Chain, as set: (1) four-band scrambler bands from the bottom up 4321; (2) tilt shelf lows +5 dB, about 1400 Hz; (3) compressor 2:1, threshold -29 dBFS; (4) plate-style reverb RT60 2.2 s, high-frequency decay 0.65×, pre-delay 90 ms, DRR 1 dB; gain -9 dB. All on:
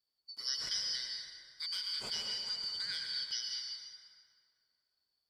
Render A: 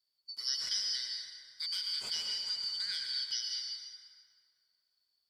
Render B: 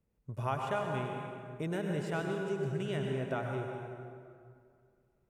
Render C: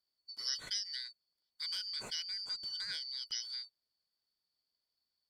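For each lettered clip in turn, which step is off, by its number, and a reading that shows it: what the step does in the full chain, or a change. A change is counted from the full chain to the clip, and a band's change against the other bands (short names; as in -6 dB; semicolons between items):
2, loudness change +2.0 LU; 1, 4 kHz band -36.5 dB; 4, momentary loudness spread change -5 LU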